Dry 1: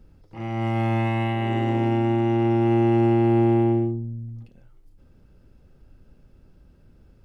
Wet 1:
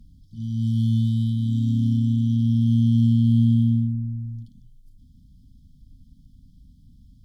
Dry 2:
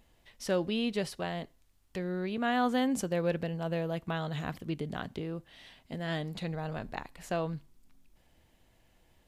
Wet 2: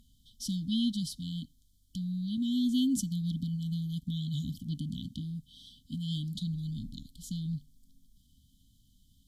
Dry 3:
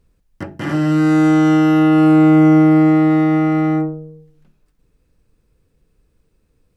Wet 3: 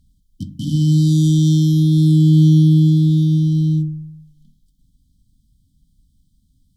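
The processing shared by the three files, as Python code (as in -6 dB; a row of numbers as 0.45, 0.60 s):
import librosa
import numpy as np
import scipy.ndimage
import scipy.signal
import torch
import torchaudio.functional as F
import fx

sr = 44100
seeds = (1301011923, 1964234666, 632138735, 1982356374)

y = fx.cheby_harmonics(x, sr, harmonics=(7,), levels_db=(-26,), full_scale_db=-3.0)
y = fx.brickwall_bandstop(y, sr, low_hz=290.0, high_hz=3000.0)
y = F.gain(torch.from_numpy(y), 7.0).numpy()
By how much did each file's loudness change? +1.0, 0.0, -1.0 LU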